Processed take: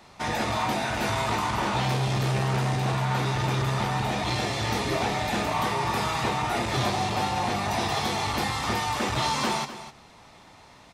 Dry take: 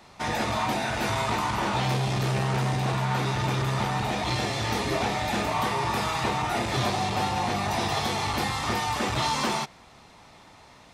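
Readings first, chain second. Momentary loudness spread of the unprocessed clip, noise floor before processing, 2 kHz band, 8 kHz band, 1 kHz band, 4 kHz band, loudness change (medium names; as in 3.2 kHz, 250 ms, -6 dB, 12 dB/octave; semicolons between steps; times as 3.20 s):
1 LU, -52 dBFS, 0.0 dB, 0.0 dB, 0.0 dB, 0.0 dB, 0.0 dB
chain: delay 253 ms -13 dB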